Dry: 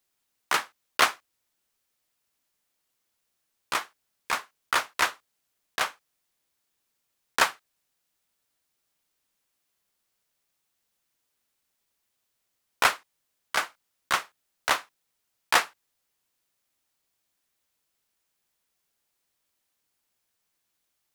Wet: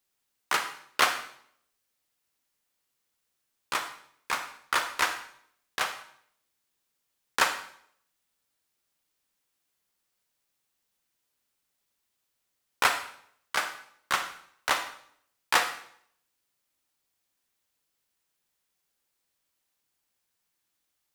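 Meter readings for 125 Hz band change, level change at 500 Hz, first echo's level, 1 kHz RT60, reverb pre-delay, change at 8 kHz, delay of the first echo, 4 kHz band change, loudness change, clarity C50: -1.5 dB, -2.0 dB, no echo, 0.60 s, 33 ms, -1.5 dB, no echo, -1.0 dB, -2.0 dB, 9.0 dB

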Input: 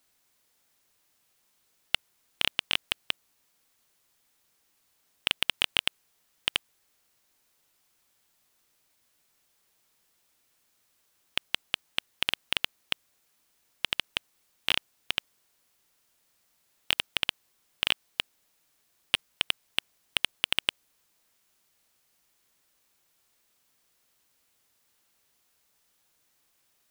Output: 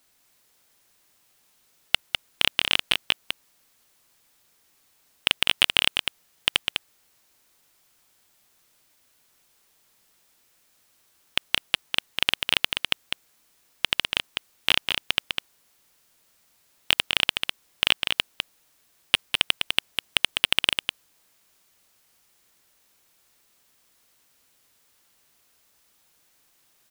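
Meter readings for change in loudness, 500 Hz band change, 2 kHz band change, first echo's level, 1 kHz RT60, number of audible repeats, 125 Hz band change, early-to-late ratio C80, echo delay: +6.0 dB, +6.5 dB, +6.5 dB, -5.5 dB, no reverb, 1, +6.5 dB, no reverb, 202 ms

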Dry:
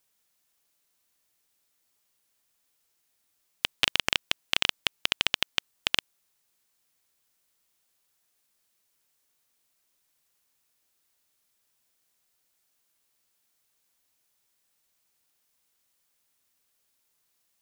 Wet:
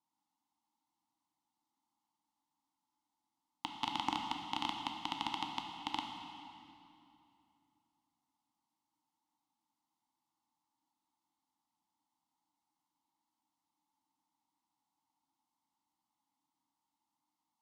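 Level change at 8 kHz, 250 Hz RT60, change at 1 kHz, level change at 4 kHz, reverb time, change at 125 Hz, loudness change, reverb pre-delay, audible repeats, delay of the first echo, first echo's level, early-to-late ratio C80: -18.0 dB, 3.3 s, +2.0 dB, -15.0 dB, 2.8 s, -7.5 dB, -12.5 dB, 9 ms, no echo, no echo, no echo, 4.5 dB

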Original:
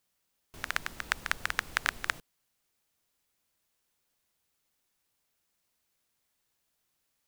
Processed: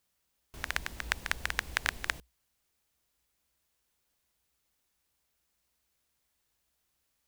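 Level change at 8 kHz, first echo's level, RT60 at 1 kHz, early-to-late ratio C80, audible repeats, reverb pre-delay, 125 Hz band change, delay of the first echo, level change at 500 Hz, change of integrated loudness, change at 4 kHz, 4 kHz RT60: 0.0 dB, no echo, no reverb, no reverb, no echo, no reverb, +4.5 dB, no echo, 0.0 dB, -1.0 dB, 0.0 dB, no reverb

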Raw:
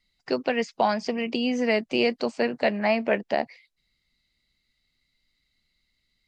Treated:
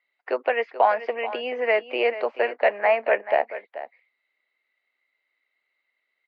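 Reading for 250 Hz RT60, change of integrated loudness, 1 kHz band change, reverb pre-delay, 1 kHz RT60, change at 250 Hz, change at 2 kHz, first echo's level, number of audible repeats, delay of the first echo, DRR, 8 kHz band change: no reverb, +2.0 dB, +4.5 dB, no reverb, no reverb, -14.0 dB, +3.0 dB, -13.5 dB, 1, 433 ms, no reverb, no reading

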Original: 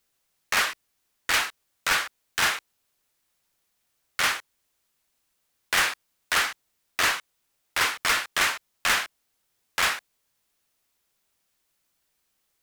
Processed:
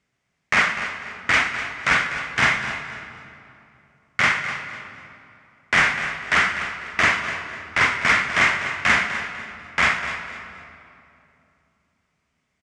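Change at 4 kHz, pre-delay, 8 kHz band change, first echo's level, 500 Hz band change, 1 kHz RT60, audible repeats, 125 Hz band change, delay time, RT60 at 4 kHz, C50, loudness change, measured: -0.5 dB, 15 ms, -5.0 dB, -11.5 dB, +6.0 dB, 2.7 s, 3, +14.0 dB, 249 ms, 1.8 s, 6.5 dB, +4.5 dB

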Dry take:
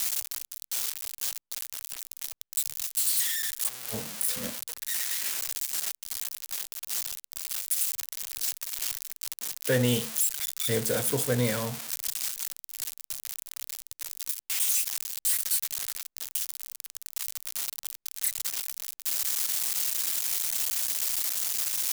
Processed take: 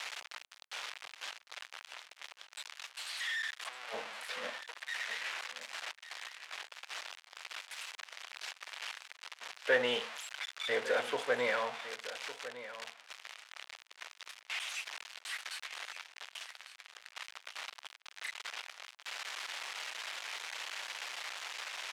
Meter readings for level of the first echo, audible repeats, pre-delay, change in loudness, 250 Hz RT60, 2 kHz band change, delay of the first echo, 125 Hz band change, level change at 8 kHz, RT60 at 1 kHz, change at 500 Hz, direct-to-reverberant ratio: -14.0 dB, 1, no reverb, -11.5 dB, no reverb, +2.0 dB, 1157 ms, -28.5 dB, -20.5 dB, no reverb, -3.5 dB, no reverb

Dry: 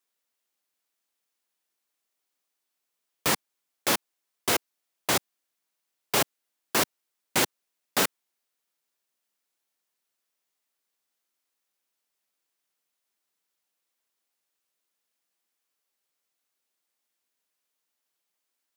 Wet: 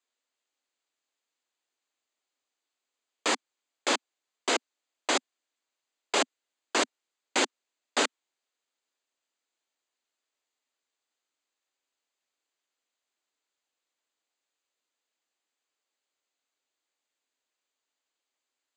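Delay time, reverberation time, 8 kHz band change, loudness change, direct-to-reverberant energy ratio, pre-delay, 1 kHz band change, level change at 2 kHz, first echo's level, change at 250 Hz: no echo, no reverb, -3.5 dB, -2.5 dB, no reverb, no reverb, -0.5 dB, -1.0 dB, no echo, -2.0 dB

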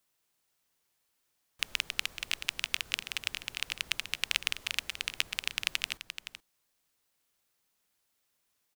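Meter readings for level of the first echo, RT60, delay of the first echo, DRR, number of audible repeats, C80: -10.5 dB, no reverb, 430 ms, no reverb, 1, no reverb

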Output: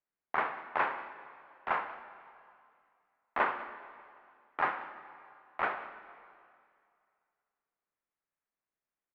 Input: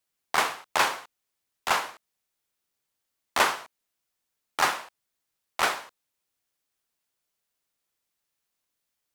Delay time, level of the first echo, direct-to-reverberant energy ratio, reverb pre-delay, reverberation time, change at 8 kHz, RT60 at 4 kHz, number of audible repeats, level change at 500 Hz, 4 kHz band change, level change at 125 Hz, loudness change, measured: 189 ms, -19.5 dB, 9.5 dB, 5 ms, 2.3 s, under -40 dB, 2.2 s, 1, -5.5 dB, -21.5 dB, -7.5 dB, -8.0 dB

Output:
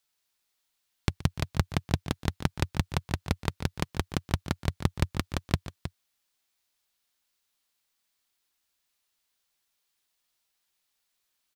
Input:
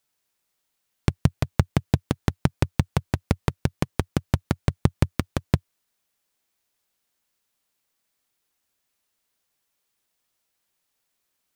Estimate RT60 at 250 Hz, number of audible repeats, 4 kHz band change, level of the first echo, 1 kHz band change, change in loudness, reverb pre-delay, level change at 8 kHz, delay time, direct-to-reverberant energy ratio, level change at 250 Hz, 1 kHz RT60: no reverb, 2, +1.0 dB, -18.5 dB, -3.0 dB, -5.5 dB, no reverb, -1.0 dB, 123 ms, no reverb, -6.5 dB, no reverb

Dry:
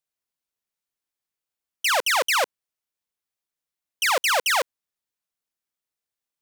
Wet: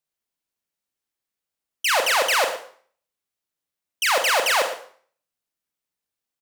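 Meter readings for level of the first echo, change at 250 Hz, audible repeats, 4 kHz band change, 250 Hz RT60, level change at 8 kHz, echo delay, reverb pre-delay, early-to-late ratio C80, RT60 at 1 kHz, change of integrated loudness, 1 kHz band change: -14.5 dB, +3.5 dB, 1, +1.5 dB, 0.50 s, +1.0 dB, 116 ms, 27 ms, 10.5 dB, 0.50 s, +1.5 dB, +1.5 dB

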